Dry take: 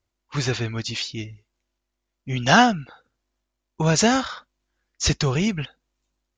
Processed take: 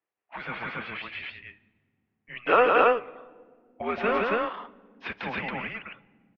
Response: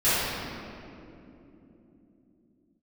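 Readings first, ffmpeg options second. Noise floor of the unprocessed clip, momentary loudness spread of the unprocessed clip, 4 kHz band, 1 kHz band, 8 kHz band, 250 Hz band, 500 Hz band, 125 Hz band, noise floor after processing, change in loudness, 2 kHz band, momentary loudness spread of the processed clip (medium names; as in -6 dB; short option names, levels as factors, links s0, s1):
-81 dBFS, 18 LU, -14.5 dB, -2.5 dB, under -40 dB, -12.5 dB, +1.5 dB, -21.0 dB, -79 dBFS, -4.5 dB, -4.0 dB, 22 LU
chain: -filter_complex "[0:a]aecho=1:1:169.1|277:0.708|0.891,asplit=2[s0][s1];[1:a]atrim=start_sample=2205,asetrate=74970,aresample=44100,lowshelf=f=230:g=8.5[s2];[s1][s2]afir=irnorm=-1:irlink=0,volume=0.0211[s3];[s0][s3]amix=inputs=2:normalize=0,highpass=f=560:t=q:w=0.5412,highpass=f=560:t=q:w=1.307,lowpass=f=2900:t=q:w=0.5176,lowpass=f=2900:t=q:w=0.7071,lowpass=f=2900:t=q:w=1.932,afreqshift=-240,volume=0.668"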